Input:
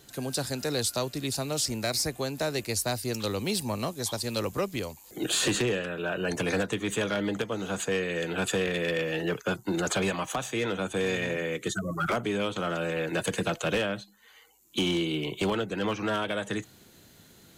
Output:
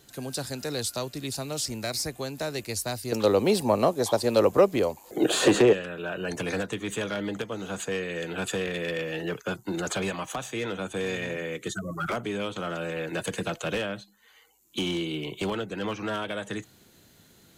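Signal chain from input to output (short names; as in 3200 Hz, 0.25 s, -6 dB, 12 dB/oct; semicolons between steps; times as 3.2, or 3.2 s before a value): 3.12–5.73 bell 570 Hz +14.5 dB 2.7 oct; gain -2 dB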